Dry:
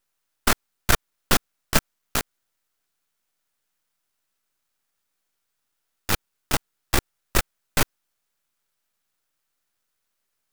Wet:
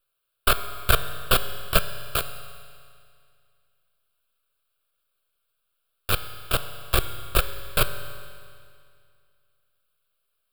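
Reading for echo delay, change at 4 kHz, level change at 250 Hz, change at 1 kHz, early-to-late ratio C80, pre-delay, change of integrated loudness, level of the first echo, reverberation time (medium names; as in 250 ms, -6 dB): no echo, +1.0 dB, -6.5 dB, +0.5 dB, 11.5 dB, 7 ms, 0.0 dB, no echo, 2.2 s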